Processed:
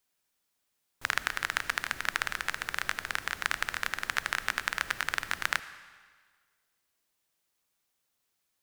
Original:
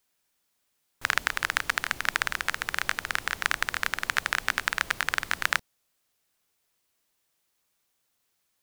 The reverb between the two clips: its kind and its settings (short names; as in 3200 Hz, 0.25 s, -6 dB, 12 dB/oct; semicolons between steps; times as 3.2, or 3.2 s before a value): digital reverb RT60 1.6 s, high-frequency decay 0.95×, pre-delay 35 ms, DRR 14 dB; gain -4 dB